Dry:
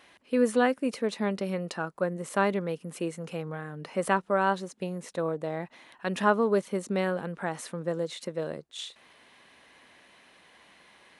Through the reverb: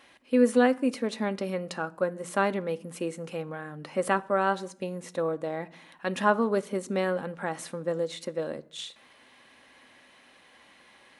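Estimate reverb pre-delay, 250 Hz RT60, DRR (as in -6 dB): 4 ms, 0.95 s, 10.0 dB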